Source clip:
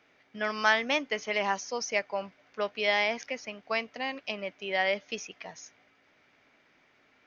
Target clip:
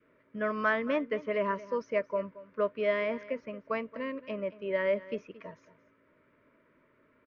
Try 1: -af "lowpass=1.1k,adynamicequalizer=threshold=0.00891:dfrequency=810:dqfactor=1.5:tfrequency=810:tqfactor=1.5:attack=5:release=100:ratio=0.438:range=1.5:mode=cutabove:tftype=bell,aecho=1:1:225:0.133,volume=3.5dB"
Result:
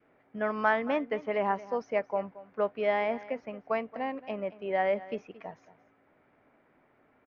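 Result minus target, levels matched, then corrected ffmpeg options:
1000 Hz band +4.0 dB
-af "lowpass=1.1k,adynamicequalizer=threshold=0.00891:dfrequency=810:dqfactor=1.5:tfrequency=810:tqfactor=1.5:attack=5:release=100:ratio=0.438:range=1.5:mode=cutabove:tftype=bell,asuperstop=centerf=770:order=8:qfactor=3,aecho=1:1:225:0.133,volume=3.5dB"

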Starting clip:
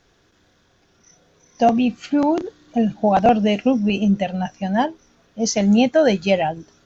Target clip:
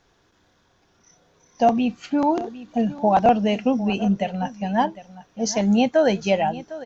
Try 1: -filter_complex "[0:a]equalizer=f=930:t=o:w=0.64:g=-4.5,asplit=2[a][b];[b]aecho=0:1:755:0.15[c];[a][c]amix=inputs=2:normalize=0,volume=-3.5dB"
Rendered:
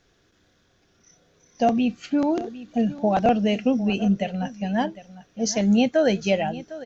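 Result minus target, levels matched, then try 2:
1000 Hz band -4.0 dB
-filter_complex "[0:a]equalizer=f=930:t=o:w=0.64:g=5.5,asplit=2[a][b];[b]aecho=0:1:755:0.15[c];[a][c]amix=inputs=2:normalize=0,volume=-3.5dB"

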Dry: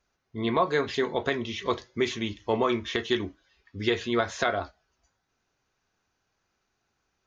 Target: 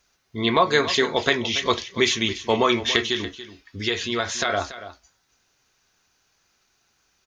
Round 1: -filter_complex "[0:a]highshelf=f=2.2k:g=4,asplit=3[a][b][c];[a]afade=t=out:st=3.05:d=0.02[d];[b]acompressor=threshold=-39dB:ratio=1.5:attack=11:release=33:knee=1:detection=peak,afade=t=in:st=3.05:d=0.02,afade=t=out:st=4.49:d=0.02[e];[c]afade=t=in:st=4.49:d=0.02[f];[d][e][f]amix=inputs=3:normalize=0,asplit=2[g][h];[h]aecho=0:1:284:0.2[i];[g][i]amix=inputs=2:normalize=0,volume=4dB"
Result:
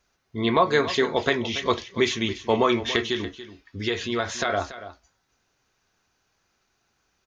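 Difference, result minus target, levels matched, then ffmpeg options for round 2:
4000 Hz band -3.5 dB
-filter_complex "[0:a]highshelf=f=2.2k:g=12,asplit=3[a][b][c];[a]afade=t=out:st=3.05:d=0.02[d];[b]acompressor=threshold=-39dB:ratio=1.5:attack=11:release=33:knee=1:detection=peak,afade=t=in:st=3.05:d=0.02,afade=t=out:st=4.49:d=0.02[e];[c]afade=t=in:st=4.49:d=0.02[f];[d][e][f]amix=inputs=3:normalize=0,asplit=2[g][h];[h]aecho=0:1:284:0.2[i];[g][i]amix=inputs=2:normalize=0,volume=4dB"

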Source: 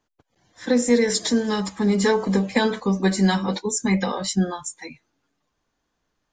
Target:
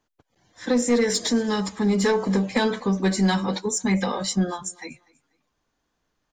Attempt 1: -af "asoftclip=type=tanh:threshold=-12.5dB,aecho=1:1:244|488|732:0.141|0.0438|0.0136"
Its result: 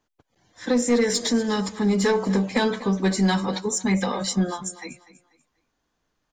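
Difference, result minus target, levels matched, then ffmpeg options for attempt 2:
echo-to-direct +8 dB
-af "asoftclip=type=tanh:threshold=-12.5dB,aecho=1:1:244|488:0.0562|0.0174"

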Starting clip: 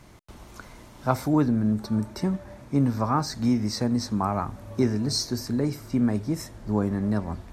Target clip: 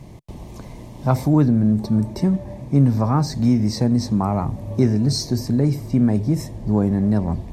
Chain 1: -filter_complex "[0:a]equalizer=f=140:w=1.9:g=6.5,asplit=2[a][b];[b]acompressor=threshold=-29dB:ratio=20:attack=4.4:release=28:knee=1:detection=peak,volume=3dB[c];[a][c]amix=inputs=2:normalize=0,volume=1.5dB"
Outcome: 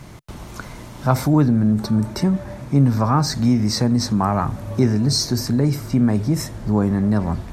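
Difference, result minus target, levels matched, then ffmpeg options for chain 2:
1000 Hz band +3.5 dB
-filter_complex "[0:a]equalizer=f=140:w=1.9:g=6.5,asplit=2[a][b];[b]acompressor=threshold=-29dB:ratio=20:attack=4.4:release=28:knee=1:detection=peak,lowpass=f=1.4k:w=0.5412,lowpass=f=1.4k:w=1.3066,volume=3dB[c];[a][c]amix=inputs=2:normalize=0,volume=1.5dB"

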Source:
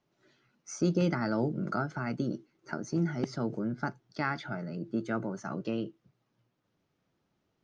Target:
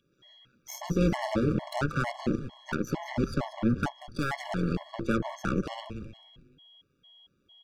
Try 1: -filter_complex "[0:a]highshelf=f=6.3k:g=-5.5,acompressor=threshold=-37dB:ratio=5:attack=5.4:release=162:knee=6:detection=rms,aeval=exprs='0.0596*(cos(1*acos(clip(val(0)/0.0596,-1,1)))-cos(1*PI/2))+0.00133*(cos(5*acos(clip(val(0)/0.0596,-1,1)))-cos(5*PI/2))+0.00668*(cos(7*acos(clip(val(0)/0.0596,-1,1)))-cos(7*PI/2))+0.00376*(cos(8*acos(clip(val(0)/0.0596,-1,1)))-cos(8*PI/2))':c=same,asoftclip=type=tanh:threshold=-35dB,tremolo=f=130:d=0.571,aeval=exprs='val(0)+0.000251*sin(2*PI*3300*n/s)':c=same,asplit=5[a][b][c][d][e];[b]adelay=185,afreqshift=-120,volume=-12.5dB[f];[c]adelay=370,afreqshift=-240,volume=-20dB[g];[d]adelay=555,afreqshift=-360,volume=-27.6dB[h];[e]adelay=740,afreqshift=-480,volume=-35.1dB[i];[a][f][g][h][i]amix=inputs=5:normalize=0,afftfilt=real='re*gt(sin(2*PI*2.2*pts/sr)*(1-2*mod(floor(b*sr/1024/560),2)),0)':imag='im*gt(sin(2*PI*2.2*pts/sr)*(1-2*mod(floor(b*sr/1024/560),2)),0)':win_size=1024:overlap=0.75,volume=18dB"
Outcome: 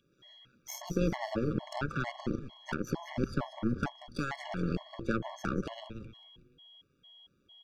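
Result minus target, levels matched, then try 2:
compressor: peak gain reduction +6.5 dB
-filter_complex "[0:a]highshelf=f=6.3k:g=-5.5,acompressor=threshold=-29dB:ratio=5:attack=5.4:release=162:knee=6:detection=rms,aeval=exprs='0.0596*(cos(1*acos(clip(val(0)/0.0596,-1,1)))-cos(1*PI/2))+0.00133*(cos(5*acos(clip(val(0)/0.0596,-1,1)))-cos(5*PI/2))+0.00668*(cos(7*acos(clip(val(0)/0.0596,-1,1)))-cos(7*PI/2))+0.00376*(cos(8*acos(clip(val(0)/0.0596,-1,1)))-cos(8*PI/2))':c=same,asoftclip=type=tanh:threshold=-35dB,tremolo=f=130:d=0.571,aeval=exprs='val(0)+0.000251*sin(2*PI*3300*n/s)':c=same,asplit=5[a][b][c][d][e];[b]adelay=185,afreqshift=-120,volume=-12.5dB[f];[c]adelay=370,afreqshift=-240,volume=-20dB[g];[d]adelay=555,afreqshift=-360,volume=-27.6dB[h];[e]adelay=740,afreqshift=-480,volume=-35.1dB[i];[a][f][g][h][i]amix=inputs=5:normalize=0,afftfilt=real='re*gt(sin(2*PI*2.2*pts/sr)*(1-2*mod(floor(b*sr/1024/560),2)),0)':imag='im*gt(sin(2*PI*2.2*pts/sr)*(1-2*mod(floor(b*sr/1024/560),2)),0)':win_size=1024:overlap=0.75,volume=18dB"

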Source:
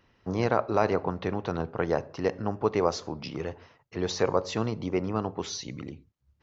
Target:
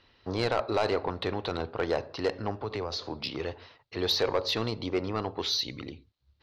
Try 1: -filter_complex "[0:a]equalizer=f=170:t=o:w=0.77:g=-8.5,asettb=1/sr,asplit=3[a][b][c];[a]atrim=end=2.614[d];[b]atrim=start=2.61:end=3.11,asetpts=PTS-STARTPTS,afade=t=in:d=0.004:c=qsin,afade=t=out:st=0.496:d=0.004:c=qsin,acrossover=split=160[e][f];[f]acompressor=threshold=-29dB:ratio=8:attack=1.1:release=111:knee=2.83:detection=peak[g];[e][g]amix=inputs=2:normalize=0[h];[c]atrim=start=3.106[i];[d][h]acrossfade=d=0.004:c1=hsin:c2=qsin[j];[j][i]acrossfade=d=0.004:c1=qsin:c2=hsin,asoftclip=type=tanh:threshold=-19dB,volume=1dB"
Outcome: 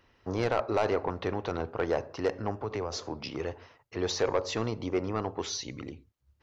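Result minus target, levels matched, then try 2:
4000 Hz band -6.5 dB
-filter_complex "[0:a]lowpass=f=4.1k:t=q:w=4,equalizer=f=170:t=o:w=0.77:g=-8.5,asettb=1/sr,asplit=3[a][b][c];[a]atrim=end=2.614[d];[b]atrim=start=2.61:end=3.11,asetpts=PTS-STARTPTS,afade=t=in:d=0.004:c=qsin,afade=t=out:st=0.496:d=0.004:c=qsin,acrossover=split=160[e][f];[f]acompressor=threshold=-29dB:ratio=8:attack=1.1:release=111:knee=2.83:detection=peak[g];[e][g]amix=inputs=2:normalize=0[h];[c]atrim=start=3.106[i];[d][h]acrossfade=d=0.004:c1=hsin:c2=qsin[j];[j][i]acrossfade=d=0.004:c1=qsin:c2=hsin,asoftclip=type=tanh:threshold=-19dB,volume=1dB"

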